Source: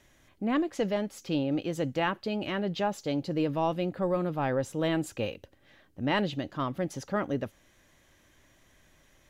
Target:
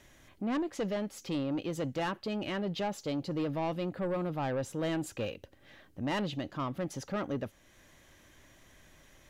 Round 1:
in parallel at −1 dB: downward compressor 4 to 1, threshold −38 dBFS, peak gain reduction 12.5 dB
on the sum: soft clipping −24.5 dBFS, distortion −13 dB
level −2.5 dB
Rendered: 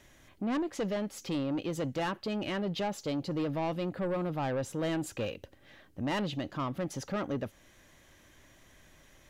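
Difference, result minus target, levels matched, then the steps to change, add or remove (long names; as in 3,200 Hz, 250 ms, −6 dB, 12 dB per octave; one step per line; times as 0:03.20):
downward compressor: peak gain reduction −8.5 dB
change: downward compressor 4 to 1, threshold −49.5 dBFS, peak gain reduction 21.5 dB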